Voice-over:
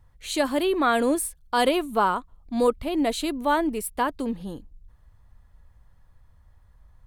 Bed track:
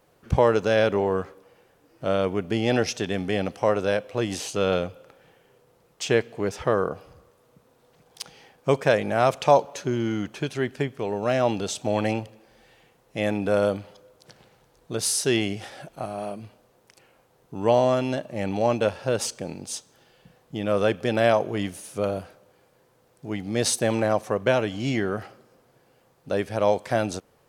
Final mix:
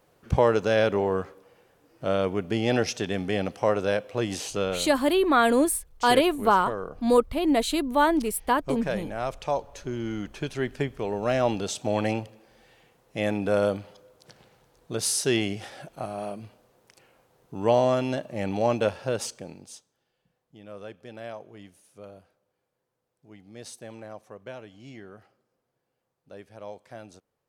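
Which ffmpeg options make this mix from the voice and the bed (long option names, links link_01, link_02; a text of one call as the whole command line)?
ffmpeg -i stem1.wav -i stem2.wav -filter_complex "[0:a]adelay=4500,volume=1.5dB[link_01];[1:a]volume=7dB,afade=type=out:start_time=4.54:duration=0.25:silence=0.375837,afade=type=in:start_time=9.55:duration=1.24:silence=0.375837,afade=type=out:start_time=18.88:duration=1.05:silence=0.133352[link_02];[link_01][link_02]amix=inputs=2:normalize=0" out.wav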